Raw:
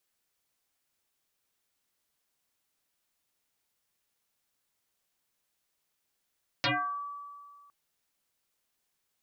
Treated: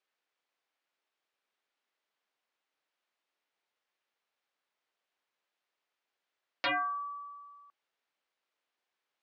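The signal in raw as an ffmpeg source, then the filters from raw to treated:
-f lavfi -i "aevalsrc='0.0668*pow(10,-3*t/1.96)*sin(2*PI*1150*t+10*pow(10,-3*t/0.44)*sin(2*PI*0.37*1150*t))':d=1.06:s=44100"
-af "highpass=380,lowpass=3.2k"

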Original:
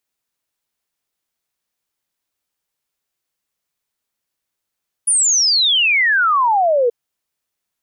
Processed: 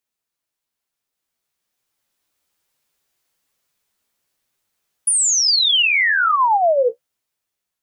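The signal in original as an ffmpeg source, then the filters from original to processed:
-f lavfi -i "aevalsrc='0.266*clip(min(t,1.83-t)/0.01,0,1)*sin(2*PI*9900*1.83/log(460/9900)*(exp(log(460/9900)*t/1.83)-1))':d=1.83:s=44100"
-af "dynaudnorm=f=550:g=7:m=12dB,flanger=delay=7.6:depth=8.9:regen=33:speed=1.1:shape=sinusoidal,alimiter=limit=-11dB:level=0:latency=1:release=107"

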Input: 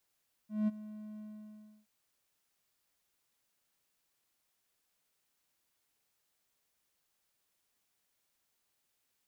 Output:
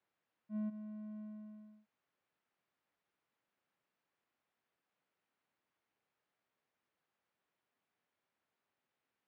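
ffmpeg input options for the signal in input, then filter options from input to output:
-f lavfi -i "aevalsrc='0.0631*(1-4*abs(mod(213*t+0.25,1)-0.5))':d=1.372:s=44100,afade=t=in:d=0.188,afade=t=out:st=0.188:d=0.025:silence=0.133,afade=t=out:st=0.7:d=0.672"
-af "alimiter=level_in=8.5dB:limit=-24dB:level=0:latency=1:release=69,volume=-8.5dB,highpass=120,lowpass=2.1k"

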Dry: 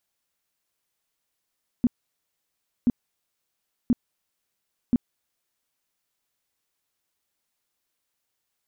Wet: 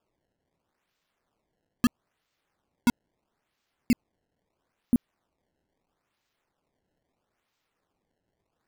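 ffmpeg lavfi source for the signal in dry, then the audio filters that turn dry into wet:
-f lavfi -i "aevalsrc='0.178*sin(2*PI*242*mod(t,1.03))*lt(mod(t,1.03),7/242)':d=4.12:s=44100"
-af "acrusher=samples=21:mix=1:aa=0.000001:lfo=1:lforange=33.6:lforate=0.76"

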